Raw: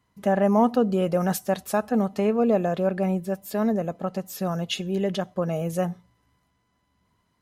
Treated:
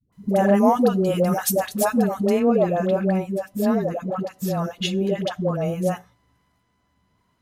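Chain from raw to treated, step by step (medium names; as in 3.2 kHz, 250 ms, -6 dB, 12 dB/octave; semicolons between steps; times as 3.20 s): treble shelf 5.4 kHz +8 dB, from 2.27 s -3 dB; phase dispersion highs, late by 126 ms, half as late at 500 Hz; trim +3 dB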